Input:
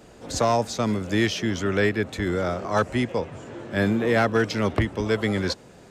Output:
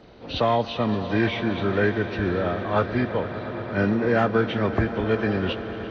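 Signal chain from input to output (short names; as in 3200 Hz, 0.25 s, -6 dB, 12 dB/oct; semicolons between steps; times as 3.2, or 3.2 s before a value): nonlinear frequency compression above 1200 Hz 1.5:1; swelling echo 0.115 s, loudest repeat 5, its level -17 dB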